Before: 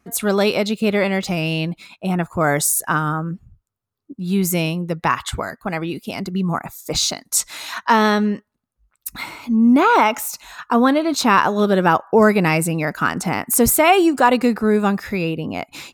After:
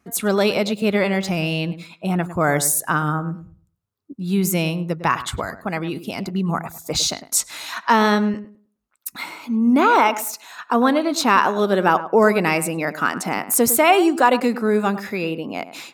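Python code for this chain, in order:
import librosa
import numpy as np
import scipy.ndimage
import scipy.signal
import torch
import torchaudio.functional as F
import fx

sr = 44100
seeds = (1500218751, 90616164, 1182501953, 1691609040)

y = fx.highpass(x, sr, hz=fx.steps((0.0, 51.0), (8.34, 220.0)), slope=12)
y = fx.echo_filtered(y, sr, ms=104, feedback_pct=23, hz=1400.0, wet_db=-12)
y = y * 10.0 ** (-1.0 / 20.0)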